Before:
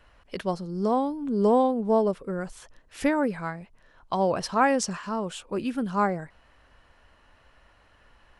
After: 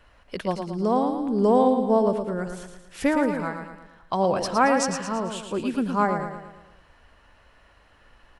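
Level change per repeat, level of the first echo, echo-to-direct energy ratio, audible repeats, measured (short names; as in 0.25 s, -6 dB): -6.0 dB, -7.0 dB, -6.0 dB, 5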